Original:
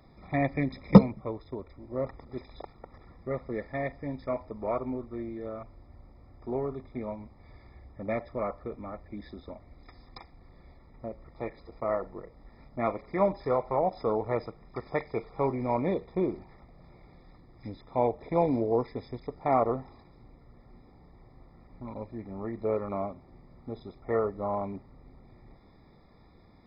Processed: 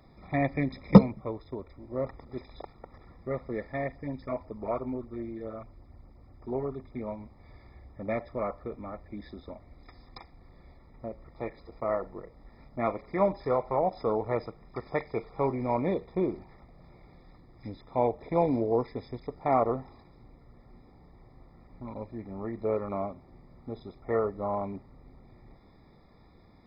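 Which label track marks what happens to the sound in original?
3.840000	7.070000	LFO notch sine 8.2 Hz 490–3700 Hz

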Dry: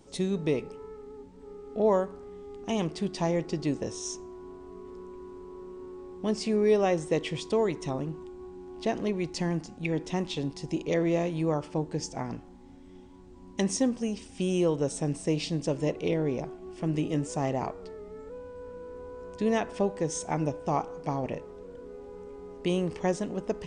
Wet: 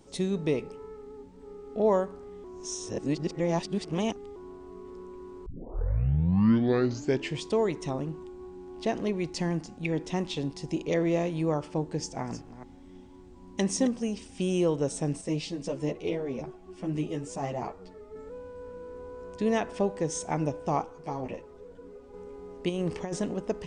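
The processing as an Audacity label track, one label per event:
2.440000	4.360000	reverse
5.460000	5.460000	tape start 1.97 s
11.980000	13.990000	chunks repeated in reverse 219 ms, level -12 dB
15.210000	18.160000	three-phase chorus
20.840000	22.140000	three-phase chorus
22.690000	23.340000	compressor with a negative ratio -29 dBFS, ratio -0.5

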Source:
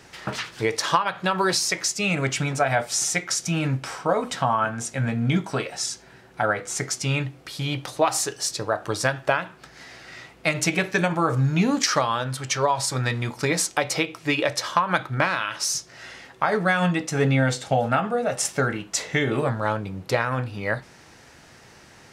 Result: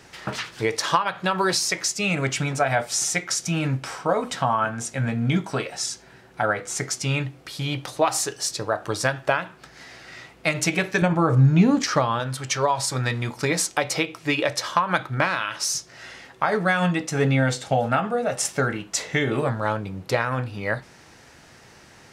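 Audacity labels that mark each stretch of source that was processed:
11.020000	12.200000	tilt EQ -2 dB/octave

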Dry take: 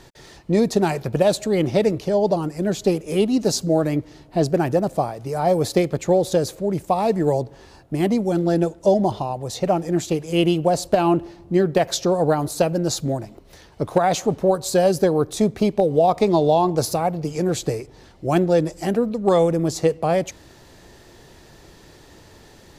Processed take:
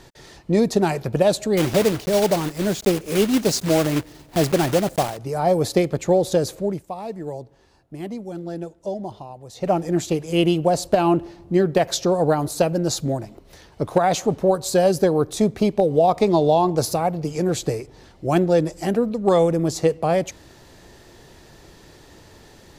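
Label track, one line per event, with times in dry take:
1.570000	5.180000	block-companded coder 3-bit
6.660000	9.710000	dip -11.5 dB, fades 0.16 s

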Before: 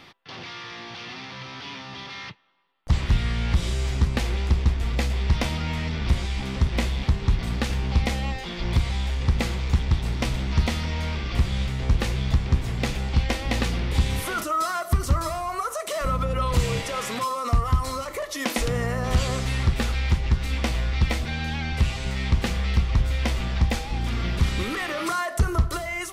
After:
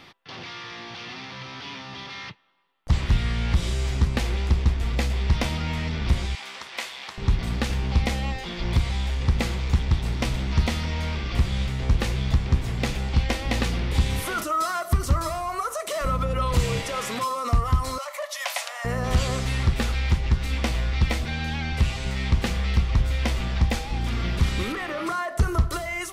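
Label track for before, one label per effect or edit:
6.350000	7.180000	high-pass 890 Hz
17.980000	18.850000	Chebyshev high-pass 560 Hz, order 8
24.720000	25.390000	treble shelf 2.8 kHz -9 dB

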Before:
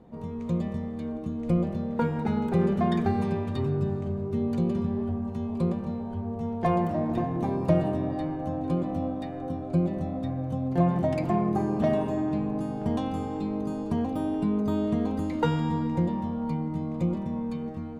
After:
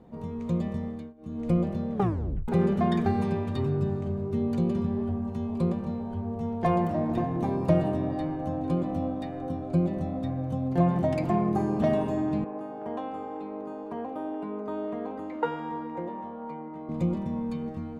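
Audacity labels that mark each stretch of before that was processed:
0.900000	1.410000	dip -22.5 dB, fades 0.24 s
1.930000	1.930000	tape stop 0.55 s
12.440000	16.890000	three-band isolator lows -23 dB, under 320 Hz, highs -18 dB, over 2.3 kHz

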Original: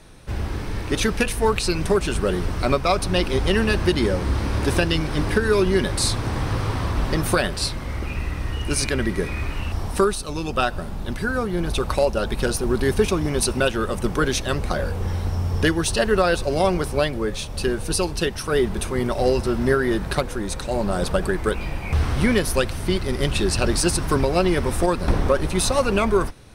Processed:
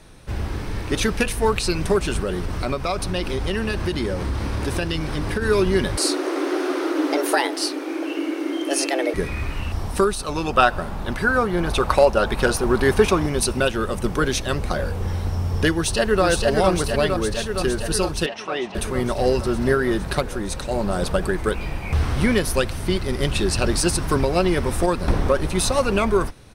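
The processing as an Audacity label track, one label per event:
2.210000	5.420000	compression 2.5:1, threshold -21 dBFS
5.970000	9.140000	frequency shift +260 Hz
10.190000	13.260000	peaking EQ 1.1 kHz +7.5 dB 2.5 oct
15.730000	16.240000	echo throw 460 ms, feedback 75%, level -3 dB
18.260000	18.750000	cabinet simulation 340–5500 Hz, peaks and dips at 430 Hz -9 dB, 740 Hz +5 dB, 1.5 kHz -7 dB, 2.6 kHz +5 dB, 4.6 kHz -9 dB

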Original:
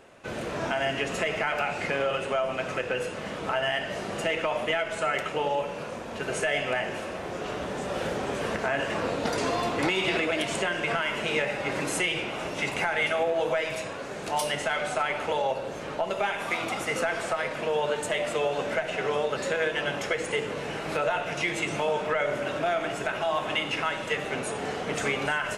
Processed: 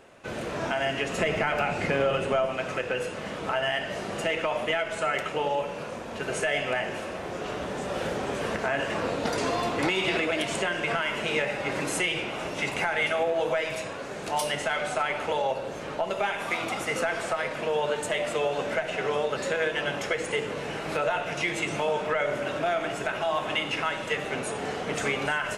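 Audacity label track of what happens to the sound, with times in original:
1.180000	2.460000	bass shelf 390 Hz +8 dB

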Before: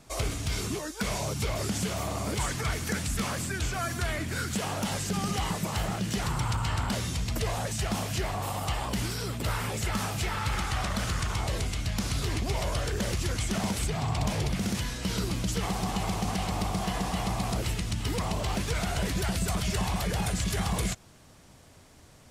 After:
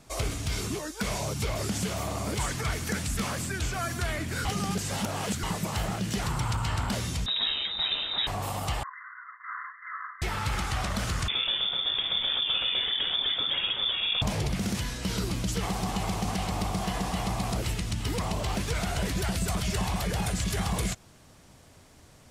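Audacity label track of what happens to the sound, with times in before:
4.450000	5.430000	reverse
7.260000	8.270000	frequency inversion carrier 3.8 kHz
8.830000	10.220000	brick-wall FIR band-pass 990–2100 Hz
11.280000	14.220000	frequency inversion carrier 3.5 kHz

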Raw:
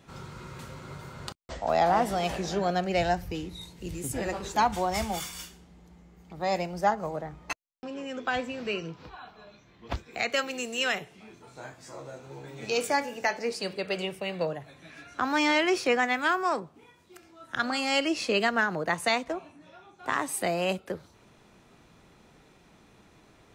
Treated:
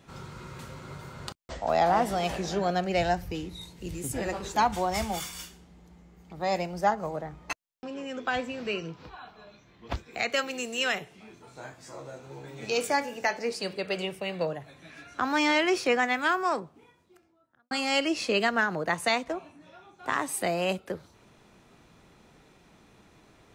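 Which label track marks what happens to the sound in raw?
16.530000	17.710000	studio fade out

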